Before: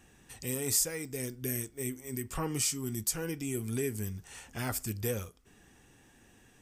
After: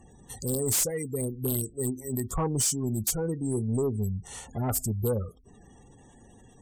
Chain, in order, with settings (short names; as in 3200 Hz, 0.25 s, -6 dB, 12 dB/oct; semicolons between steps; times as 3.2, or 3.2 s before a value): thirty-one-band EQ 315 Hz -5 dB, 1600 Hz -11 dB, 2500 Hz -12 dB, 5000 Hz -5 dB; spectral gate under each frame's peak -20 dB strong; sine folder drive 10 dB, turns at -16 dBFS; gain -5 dB